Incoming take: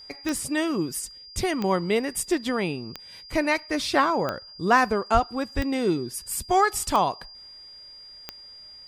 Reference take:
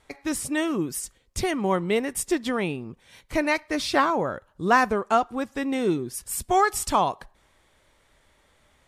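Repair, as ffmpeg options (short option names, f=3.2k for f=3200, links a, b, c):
-filter_complex "[0:a]adeclick=t=4,bandreject=f=4.8k:w=30,asplit=3[a][b][c];[a]afade=t=out:st=5.13:d=0.02[d];[b]highpass=f=140:w=0.5412,highpass=f=140:w=1.3066,afade=t=in:st=5.13:d=0.02,afade=t=out:st=5.25:d=0.02[e];[c]afade=t=in:st=5.25:d=0.02[f];[d][e][f]amix=inputs=3:normalize=0,asplit=3[g][h][i];[g]afade=t=out:st=5.55:d=0.02[j];[h]highpass=f=140:w=0.5412,highpass=f=140:w=1.3066,afade=t=in:st=5.55:d=0.02,afade=t=out:st=5.67:d=0.02[k];[i]afade=t=in:st=5.67:d=0.02[l];[j][k][l]amix=inputs=3:normalize=0"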